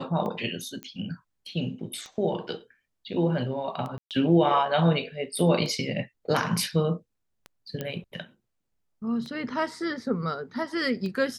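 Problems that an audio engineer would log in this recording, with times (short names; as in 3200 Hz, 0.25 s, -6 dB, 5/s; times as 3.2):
tick 33 1/3 rpm -24 dBFS
0.83 pop -23 dBFS
3.98–4.11 gap 0.128 s
7.81 pop -17 dBFS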